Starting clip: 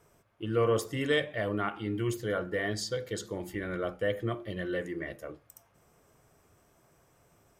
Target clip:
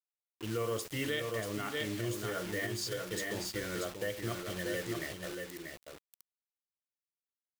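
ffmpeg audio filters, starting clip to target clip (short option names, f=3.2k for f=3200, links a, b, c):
-filter_complex "[0:a]acrusher=bits=6:mix=0:aa=0.000001,asettb=1/sr,asplit=3[a][b][c];[a]atrim=end=1.994[d];[b]atrim=start=1.99:end=2.67,asetpts=PTS-STARTPTS,afade=t=in:d=0.004:c=qsin,afade=t=out:st=0.676:d=0.004:c=qsin,asplit=2[e][f];[f]adelay=17,volume=-3dB[g];[e][g]amix=inputs=2:normalize=0,atrim=end_sample=29988[h];[c]atrim=start=2.666[i];[d][h]acrossfade=d=0.004:c1=hsin:c2=qsin[j];[j][i]acrossfade=d=0.004:c1=qsin:c2=hsin,aecho=1:1:637:0.531,alimiter=limit=-22dB:level=0:latency=1:release=203,adynamicequalizer=threshold=0.00355:dfrequency=1700:dqfactor=0.7:tfrequency=1700:tqfactor=0.7:attack=5:release=100:ratio=0.375:range=2.5:mode=boostabove:tftype=highshelf,volume=-4.5dB"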